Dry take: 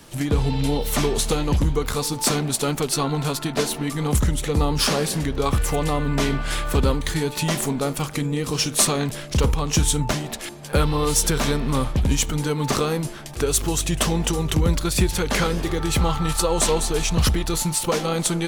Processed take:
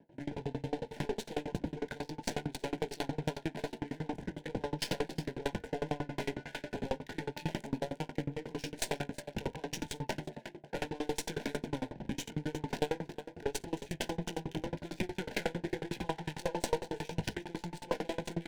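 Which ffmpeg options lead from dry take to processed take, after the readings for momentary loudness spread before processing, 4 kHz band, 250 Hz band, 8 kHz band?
5 LU, -17.5 dB, -14.5 dB, -23.5 dB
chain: -af "highpass=180,flanger=delay=18.5:depth=5.6:speed=0.87,aeval=exprs='clip(val(0),-1,0.0335)':c=same,adynamicsmooth=sensitivity=5:basefreq=600,asuperstop=centerf=1200:order=12:qfactor=2.9,aecho=1:1:58|351:0.299|0.224,aeval=exprs='val(0)*pow(10,-30*if(lt(mod(11*n/s,1),2*abs(11)/1000),1-mod(11*n/s,1)/(2*abs(11)/1000),(mod(11*n/s,1)-2*abs(11)/1000)/(1-2*abs(11)/1000))/20)':c=same"

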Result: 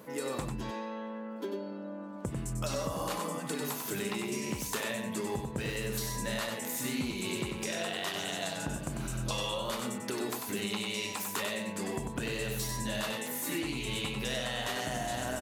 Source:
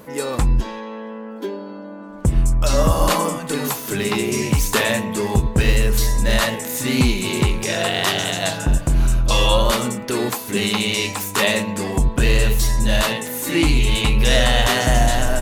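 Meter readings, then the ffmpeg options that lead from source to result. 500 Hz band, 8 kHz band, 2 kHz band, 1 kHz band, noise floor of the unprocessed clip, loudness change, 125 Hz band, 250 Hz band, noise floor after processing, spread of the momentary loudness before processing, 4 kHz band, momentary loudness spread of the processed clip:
-14.0 dB, -12.5 dB, -14.5 dB, -14.5 dB, -33 dBFS, -15.5 dB, -18.0 dB, -13.5 dB, -41 dBFS, 7 LU, -14.5 dB, 5 LU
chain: -filter_complex "[0:a]highpass=120,acompressor=threshold=0.0631:ratio=6,asplit=2[s0][s1];[s1]aecho=0:1:96:0.531[s2];[s0][s2]amix=inputs=2:normalize=0,volume=0.376"

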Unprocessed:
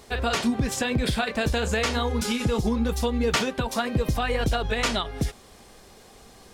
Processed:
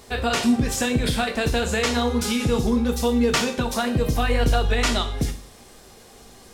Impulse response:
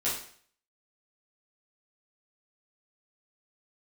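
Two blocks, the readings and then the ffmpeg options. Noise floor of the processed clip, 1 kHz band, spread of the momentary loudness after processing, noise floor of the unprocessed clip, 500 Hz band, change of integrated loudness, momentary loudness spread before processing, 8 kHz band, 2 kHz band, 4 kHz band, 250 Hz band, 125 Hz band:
-48 dBFS, +2.5 dB, 4 LU, -51 dBFS, +3.0 dB, +3.5 dB, 3 LU, +4.0 dB, +2.0 dB, +3.0 dB, +4.5 dB, +2.5 dB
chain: -filter_complex "[0:a]asplit=2[s0][s1];[1:a]atrim=start_sample=2205,lowshelf=f=480:g=5.5,highshelf=f=4100:g=12[s2];[s1][s2]afir=irnorm=-1:irlink=0,volume=0.158[s3];[s0][s3]amix=inputs=2:normalize=0"

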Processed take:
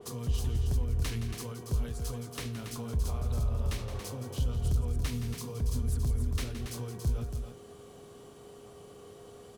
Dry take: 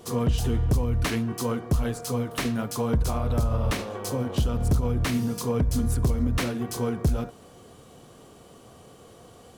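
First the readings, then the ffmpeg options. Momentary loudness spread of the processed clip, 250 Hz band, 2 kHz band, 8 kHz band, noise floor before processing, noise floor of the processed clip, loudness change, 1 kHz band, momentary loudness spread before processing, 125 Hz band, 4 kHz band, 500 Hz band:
20 LU, -13.0 dB, -11.5 dB, -7.0 dB, -51 dBFS, -51 dBFS, -7.0 dB, -13.0 dB, 5 LU, -6.0 dB, -7.5 dB, -12.5 dB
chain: -filter_complex "[0:a]acrossover=split=120|3000[s0][s1][s2];[s1]acompressor=threshold=0.00891:ratio=3[s3];[s0][s3][s2]amix=inputs=3:normalize=0,asplit=2[s4][s5];[s5]aecho=0:1:169.1|279.9:0.316|0.447[s6];[s4][s6]amix=inputs=2:normalize=0,aeval=exprs='val(0)+0.00501*sin(2*PI*410*n/s)':c=same,adynamicequalizer=threshold=0.00316:dfrequency=3500:dqfactor=0.7:tfrequency=3500:tqfactor=0.7:attack=5:release=100:ratio=0.375:range=2.5:mode=cutabove:tftype=highshelf,volume=0.596"

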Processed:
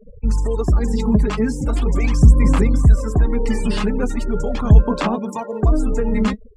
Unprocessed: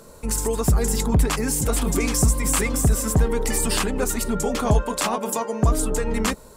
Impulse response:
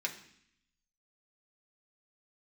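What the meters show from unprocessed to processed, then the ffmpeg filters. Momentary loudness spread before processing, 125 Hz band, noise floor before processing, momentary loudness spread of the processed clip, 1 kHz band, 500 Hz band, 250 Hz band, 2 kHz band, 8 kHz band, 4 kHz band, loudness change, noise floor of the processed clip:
4 LU, +6.5 dB, -45 dBFS, 9 LU, -0.5 dB, +1.5 dB, +5.5 dB, -1.5 dB, -14.5 dB, -5.0 dB, +4.0 dB, -40 dBFS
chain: -filter_complex "[0:a]afftfilt=real='re*gte(hypot(re,im),0.0251)':imag='im*gte(hypot(re,im),0.0251)':win_size=1024:overlap=0.75,lowpass=4100,acrossover=split=330[s0][s1];[s0]acontrast=81[s2];[s2][s1]amix=inputs=2:normalize=0,aphaser=in_gain=1:out_gain=1:delay=4.8:decay=0.58:speed=0.4:type=sinusoidal,volume=0.708"

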